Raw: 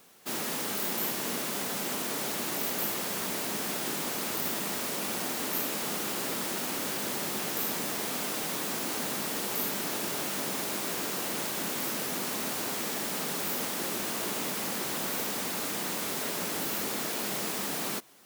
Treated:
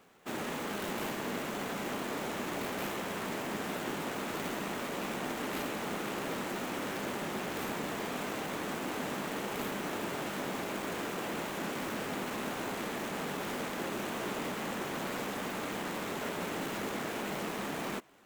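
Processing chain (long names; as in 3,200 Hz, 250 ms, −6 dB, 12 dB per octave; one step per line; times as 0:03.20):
running median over 9 samples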